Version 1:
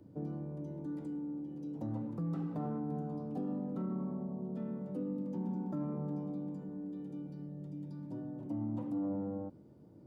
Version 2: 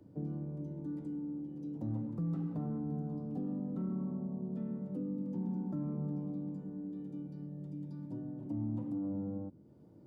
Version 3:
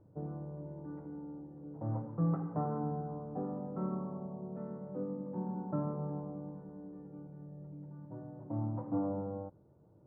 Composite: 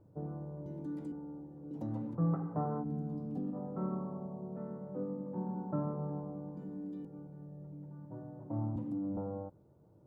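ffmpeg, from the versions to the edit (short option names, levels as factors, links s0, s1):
-filter_complex "[0:a]asplit=3[s0][s1][s2];[1:a]asplit=2[s3][s4];[2:a]asplit=6[s5][s6][s7][s8][s9][s10];[s5]atrim=end=0.662[s11];[s0]atrim=start=0.658:end=1.122[s12];[s6]atrim=start=1.118:end=1.712[s13];[s1]atrim=start=1.708:end=2.152[s14];[s7]atrim=start=2.148:end=2.86[s15];[s3]atrim=start=2.8:end=3.56[s16];[s8]atrim=start=3.5:end=6.572[s17];[s2]atrim=start=6.568:end=7.052[s18];[s9]atrim=start=7.048:end=8.762[s19];[s4]atrim=start=8.758:end=9.172[s20];[s10]atrim=start=9.168[s21];[s11][s12]acrossfade=d=0.004:c1=hsin:c2=hsin[s22];[s22][s13]acrossfade=d=0.004:c1=hsin:c2=hsin[s23];[s23][s14]acrossfade=d=0.004:c1=hsin:c2=hsin[s24];[s24][s15]acrossfade=d=0.004:c1=hsin:c2=hsin[s25];[s25][s16]acrossfade=d=0.06:c1=tri:c2=tri[s26];[s26][s17]acrossfade=d=0.06:c1=tri:c2=tri[s27];[s27][s18]acrossfade=d=0.004:c1=hsin:c2=hsin[s28];[s28][s19]acrossfade=d=0.004:c1=hsin:c2=hsin[s29];[s29][s20]acrossfade=d=0.004:c1=hsin:c2=hsin[s30];[s30][s21]acrossfade=d=0.004:c1=hsin:c2=hsin"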